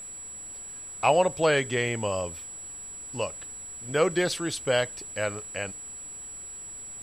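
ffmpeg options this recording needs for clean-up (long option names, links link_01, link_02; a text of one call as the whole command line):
ffmpeg -i in.wav -af "bandreject=frequency=7800:width=30,afftdn=noise_reduction=30:noise_floor=-41" out.wav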